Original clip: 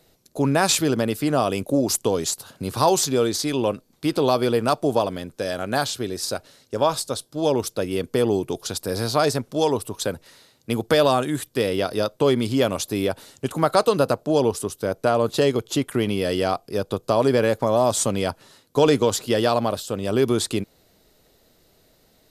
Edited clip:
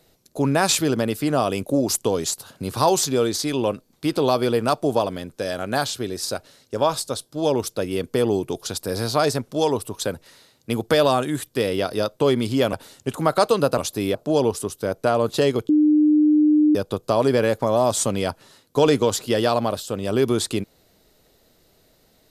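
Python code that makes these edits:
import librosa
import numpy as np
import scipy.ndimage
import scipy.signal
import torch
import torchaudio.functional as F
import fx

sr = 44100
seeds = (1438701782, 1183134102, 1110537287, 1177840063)

y = fx.edit(x, sr, fx.move(start_s=12.73, length_s=0.37, to_s=14.15),
    fx.bleep(start_s=15.69, length_s=1.06, hz=302.0, db=-12.5), tone=tone)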